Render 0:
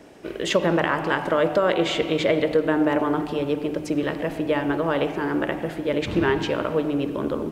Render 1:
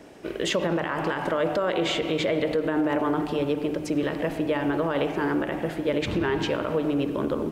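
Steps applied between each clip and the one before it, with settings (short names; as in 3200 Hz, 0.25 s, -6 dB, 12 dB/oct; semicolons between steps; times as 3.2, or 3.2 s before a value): limiter -16 dBFS, peak gain reduction 9.5 dB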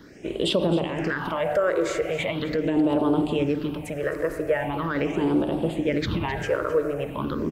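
phaser stages 6, 0.41 Hz, lowest notch 210–1900 Hz; echo 0.261 s -15 dB; gain +3.5 dB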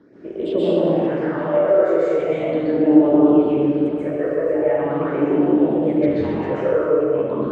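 band-pass 410 Hz, Q 0.79; plate-style reverb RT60 1.5 s, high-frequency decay 0.85×, pre-delay 0.115 s, DRR -9 dB; gain -1.5 dB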